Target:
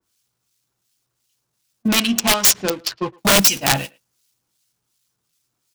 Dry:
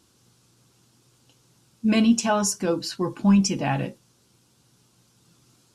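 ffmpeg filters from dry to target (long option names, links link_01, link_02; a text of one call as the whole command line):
ffmpeg -i in.wav -filter_complex "[0:a]aeval=exprs='val(0)+0.5*0.0158*sgn(val(0))':channel_layout=same,aemphasis=mode=production:type=50kf,agate=range=-39dB:threshold=-24dB:ratio=16:detection=peak,acrossover=split=100[link_01][link_02];[link_01]acontrast=87[link_03];[link_03][link_02]amix=inputs=2:normalize=0,acrossover=split=1800[link_04][link_05];[link_04]aeval=exprs='val(0)*(1-0.7/2+0.7/2*cos(2*PI*2.7*n/s))':channel_layout=same[link_06];[link_05]aeval=exprs='val(0)*(1-0.7/2-0.7/2*cos(2*PI*2.7*n/s))':channel_layout=same[link_07];[link_06][link_07]amix=inputs=2:normalize=0,asettb=1/sr,asplit=3[link_08][link_09][link_10];[link_08]atrim=end=1.884[link_11];[link_09]atrim=start=1.88:end=3.18,asetpts=PTS-STARTPTS,afade=type=in:duration=0.004:curve=qsin,afade=type=out:start_time=1.296:duration=0.004:curve=qsin,adynamicsmooth=sensitivity=5:basefreq=550[link_12];[link_10]atrim=start=3.176[link_13];[link_11][link_12]acrossfade=duration=0.004:curve1=hsin:curve2=qsin[link_14];[link_14][link_13]acrossfade=duration=0.004:curve1=qsin:curve2=hsin,asplit=2[link_15][link_16];[link_16]highpass=frequency=720:poles=1,volume=7dB,asoftclip=type=tanh:threshold=-6.5dB[link_17];[link_15][link_17]amix=inputs=2:normalize=0,lowpass=frequency=5700:poles=1,volume=-6dB,aeval=exprs='(mod(6.68*val(0)+1,2)-1)/6.68':channel_layout=same,asplit=2[link_18][link_19];[link_19]adelay=110,highpass=300,lowpass=3400,asoftclip=type=hard:threshold=-25dB,volume=-24dB[link_20];[link_18][link_20]amix=inputs=2:normalize=0,adynamicequalizer=threshold=0.0141:dfrequency=2300:dqfactor=0.7:tfrequency=2300:tqfactor=0.7:attack=5:release=100:ratio=0.375:range=3:mode=boostabove:tftype=highshelf,volume=5.5dB" out.wav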